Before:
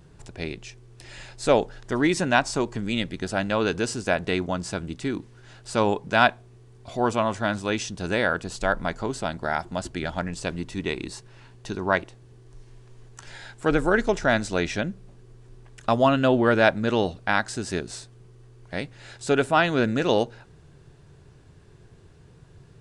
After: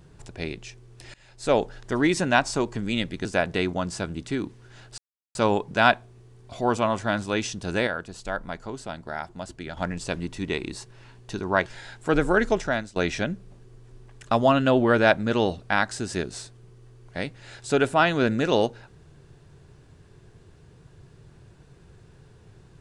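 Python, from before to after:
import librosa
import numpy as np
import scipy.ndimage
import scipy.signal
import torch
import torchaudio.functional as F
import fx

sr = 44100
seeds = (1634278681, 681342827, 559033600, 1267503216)

y = fx.edit(x, sr, fx.fade_in_from(start_s=1.14, length_s=0.5, floor_db=-23.0),
    fx.cut(start_s=3.25, length_s=0.73),
    fx.insert_silence(at_s=5.71, length_s=0.37),
    fx.clip_gain(start_s=8.23, length_s=1.9, db=-6.5),
    fx.cut(start_s=12.02, length_s=1.21),
    fx.fade_out_to(start_s=14.11, length_s=0.42, floor_db=-21.0), tone=tone)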